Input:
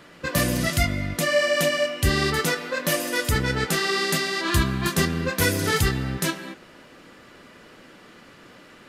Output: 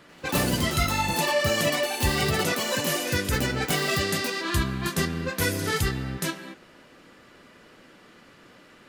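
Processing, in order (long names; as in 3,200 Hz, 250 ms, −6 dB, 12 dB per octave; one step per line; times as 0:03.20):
delay with pitch and tempo change per echo 91 ms, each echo +7 semitones, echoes 2
level −4 dB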